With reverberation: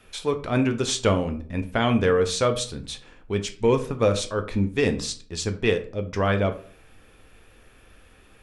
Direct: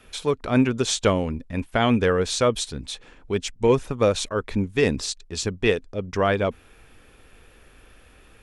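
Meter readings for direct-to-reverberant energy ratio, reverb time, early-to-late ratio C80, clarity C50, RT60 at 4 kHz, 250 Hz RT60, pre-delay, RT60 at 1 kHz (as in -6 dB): 7.0 dB, 0.45 s, 17.5 dB, 13.5 dB, 0.30 s, 0.60 s, 8 ms, 0.40 s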